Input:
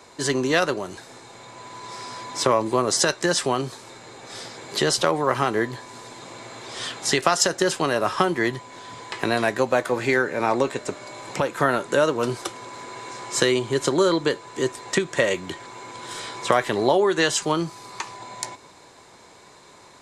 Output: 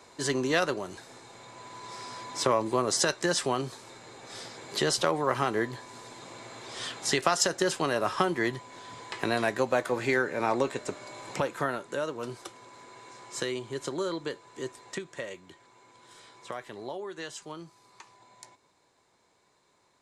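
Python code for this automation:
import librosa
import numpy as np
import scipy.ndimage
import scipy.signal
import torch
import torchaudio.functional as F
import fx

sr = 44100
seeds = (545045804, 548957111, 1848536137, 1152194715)

y = fx.gain(x, sr, db=fx.line((11.43, -5.5), (11.83, -12.5), (14.78, -12.5), (15.42, -19.0)))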